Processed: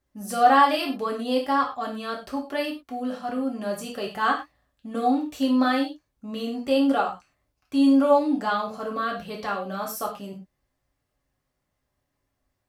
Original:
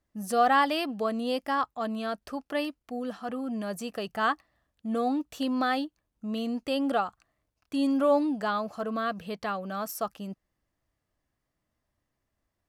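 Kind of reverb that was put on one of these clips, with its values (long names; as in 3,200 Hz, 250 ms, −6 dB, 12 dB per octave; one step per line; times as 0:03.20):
reverb whose tail is shaped and stops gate 140 ms falling, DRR −1.5 dB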